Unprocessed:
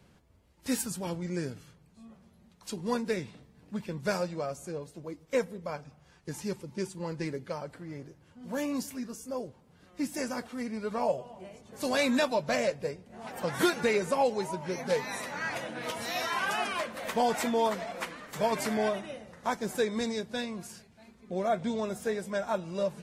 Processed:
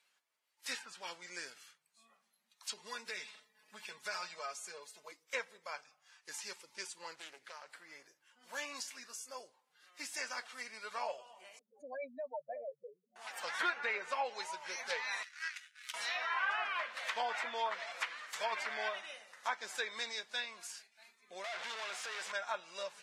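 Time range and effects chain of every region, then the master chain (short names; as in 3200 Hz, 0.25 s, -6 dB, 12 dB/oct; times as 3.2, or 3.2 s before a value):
2.69–5.12 comb 4.7 ms, depth 80% + compressor 4:1, threshold -29 dBFS
7.15–7.74 compressor 2:1, threshold -42 dBFS + Doppler distortion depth 0.47 ms
11.59–13.16 spectral contrast raised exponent 3.5 + band-pass 380 Hz, Q 0.58
15.23–15.94 steep high-pass 1400 Hz + power-law curve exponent 2
21.44–22.32 G.711 law mismatch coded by A + compressor, threshold -36 dBFS + overdrive pedal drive 36 dB, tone 3100 Hz, clips at -29 dBFS
whole clip: spectral noise reduction 9 dB; HPF 1400 Hz 12 dB/oct; treble ducked by the level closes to 1900 Hz, closed at -32 dBFS; gain +2 dB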